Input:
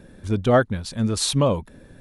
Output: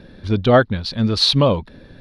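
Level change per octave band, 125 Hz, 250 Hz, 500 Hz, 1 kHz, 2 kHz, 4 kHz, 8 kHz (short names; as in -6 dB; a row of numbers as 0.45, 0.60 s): +4.0, +4.0, +4.0, +4.5, +5.0, +10.0, -7.5 dB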